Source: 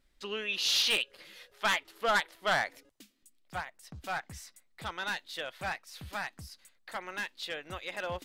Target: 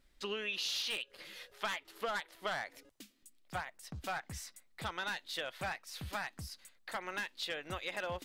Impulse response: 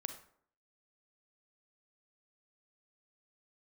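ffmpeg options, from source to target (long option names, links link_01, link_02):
-af "acompressor=threshold=-36dB:ratio=12,volume=1.5dB"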